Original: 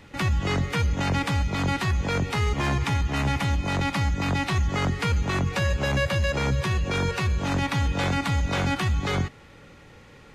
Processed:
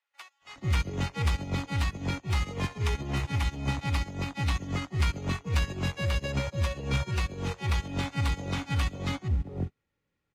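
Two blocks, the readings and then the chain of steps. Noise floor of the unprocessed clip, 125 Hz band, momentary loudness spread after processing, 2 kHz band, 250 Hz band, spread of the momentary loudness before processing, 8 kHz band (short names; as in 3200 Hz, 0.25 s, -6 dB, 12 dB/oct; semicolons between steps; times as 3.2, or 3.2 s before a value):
-49 dBFS, -4.5 dB, 4 LU, -7.5 dB, -6.5 dB, 1 LU, -5.5 dB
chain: dynamic EQ 1600 Hz, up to -5 dB, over -45 dBFS, Q 3.1; bands offset in time highs, lows 0.42 s, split 700 Hz; one-sided clip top -19 dBFS, bottom -16.5 dBFS; upward expander 2.5:1, over -42 dBFS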